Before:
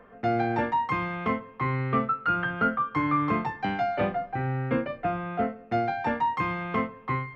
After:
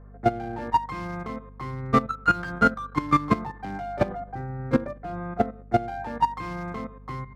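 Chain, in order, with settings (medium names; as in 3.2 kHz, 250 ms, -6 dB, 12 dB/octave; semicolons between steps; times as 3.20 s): local Wiener filter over 15 samples; de-hum 246.1 Hz, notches 16; level held to a coarse grid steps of 12 dB; hum 50 Hz, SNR 13 dB; upward expansion 1.5:1, over -40 dBFS; trim +9 dB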